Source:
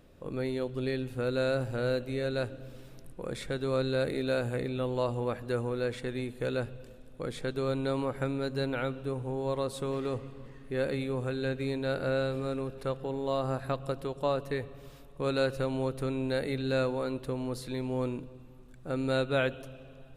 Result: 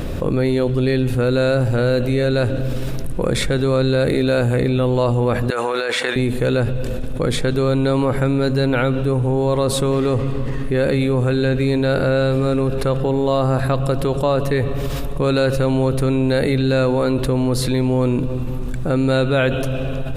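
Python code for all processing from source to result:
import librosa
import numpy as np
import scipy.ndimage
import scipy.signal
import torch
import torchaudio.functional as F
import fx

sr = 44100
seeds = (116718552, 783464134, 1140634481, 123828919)

y = fx.chain(x, sr, fx.highpass(hz=800.0, slope=12),
    fx.high_shelf(hz=8100.0, db=-8.0),
    fx.over_compress(threshold_db=-44.0, ratio=-1.0), at=(5.5, 6.16))
y = fx.low_shelf(y, sr, hz=180.0, db=6.5)
y = fx.env_flatten(y, sr, amount_pct=70)
y = y * librosa.db_to_amplitude(8.5)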